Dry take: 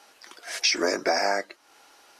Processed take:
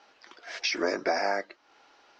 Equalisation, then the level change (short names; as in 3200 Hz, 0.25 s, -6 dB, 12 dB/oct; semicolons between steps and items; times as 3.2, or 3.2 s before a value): LPF 6400 Hz 24 dB/oct; air absorption 110 m; -2.5 dB